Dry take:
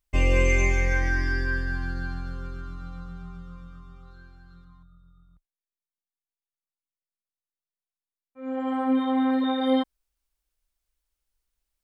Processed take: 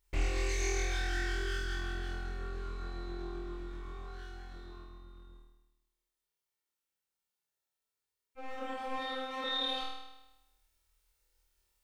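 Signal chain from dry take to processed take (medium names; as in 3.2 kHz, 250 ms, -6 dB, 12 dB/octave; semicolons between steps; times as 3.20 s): comb filter that takes the minimum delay 2.2 ms; dynamic bell 5.4 kHz, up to +5 dB, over -47 dBFS, Q 0.84; compression 2.5:1, threshold -45 dBFS, peak gain reduction 17.5 dB; flutter echo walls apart 4.4 m, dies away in 0.99 s; loudspeaker Doppler distortion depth 0.26 ms; trim +3 dB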